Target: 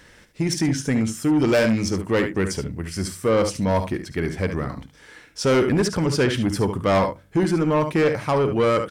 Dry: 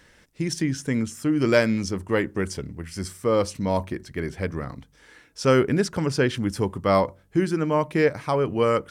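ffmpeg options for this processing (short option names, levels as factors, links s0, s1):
-af "aecho=1:1:53|72:0.158|0.299,asoftclip=type=tanh:threshold=0.119,volume=1.78"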